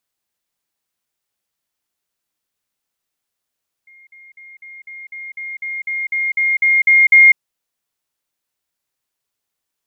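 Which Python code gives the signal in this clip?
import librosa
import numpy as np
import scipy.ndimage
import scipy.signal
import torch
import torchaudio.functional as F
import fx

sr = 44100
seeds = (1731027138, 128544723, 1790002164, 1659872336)

y = fx.level_ladder(sr, hz=2130.0, from_db=-43.0, step_db=3.0, steps=14, dwell_s=0.2, gap_s=0.05)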